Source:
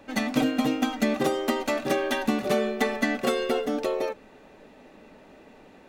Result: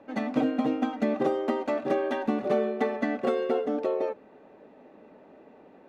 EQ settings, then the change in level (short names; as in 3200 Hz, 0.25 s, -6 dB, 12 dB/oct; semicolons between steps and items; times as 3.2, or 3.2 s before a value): band-pass 470 Hz, Q 0.57; 0.0 dB